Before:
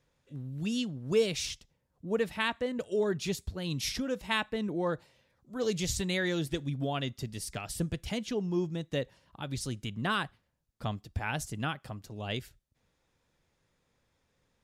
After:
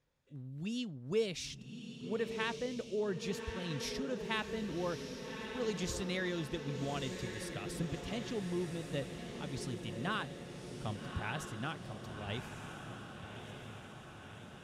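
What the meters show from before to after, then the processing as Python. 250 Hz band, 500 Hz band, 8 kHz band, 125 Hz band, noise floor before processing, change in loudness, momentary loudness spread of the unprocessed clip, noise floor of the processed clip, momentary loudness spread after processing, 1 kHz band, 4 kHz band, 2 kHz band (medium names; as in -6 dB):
-5.0 dB, -5.0 dB, -7.5 dB, -5.0 dB, -77 dBFS, -6.0 dB, 10 LU, -51 dBFS, 11 LU, -5.0 dB, -6.0 dB, -5.5 dB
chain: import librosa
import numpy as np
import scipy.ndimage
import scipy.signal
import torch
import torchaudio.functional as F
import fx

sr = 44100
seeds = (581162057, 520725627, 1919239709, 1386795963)

y = fx.high_shelf(x, sr, hz=11000.0, db=-9.5)
y = fx.echo_diffused(y, sr, ms=1191, feedback_pct=63, wet_db=-6.5)
y = y * 10.0 ** (-6.5 / 20.0)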